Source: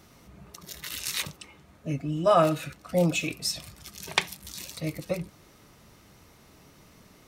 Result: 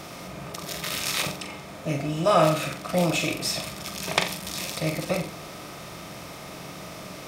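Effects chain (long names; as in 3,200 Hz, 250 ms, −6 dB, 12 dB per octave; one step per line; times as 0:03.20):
compressor on every frequency bin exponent 0.6
flutter between parallel walls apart 7.5 metres, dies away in 0.35 s
level −1 dB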